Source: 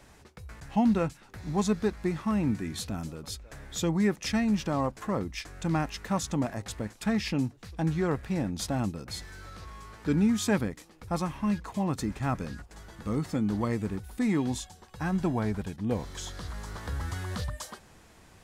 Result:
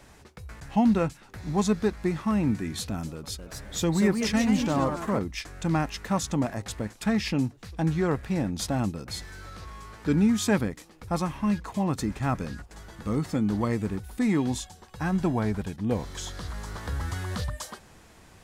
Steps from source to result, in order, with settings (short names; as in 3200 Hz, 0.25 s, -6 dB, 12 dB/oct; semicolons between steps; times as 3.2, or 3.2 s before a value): 3.12–5.19 echoes that change speed 0.264 s, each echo +2 st, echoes 3, each echo -6 dB; gain +2.5 dB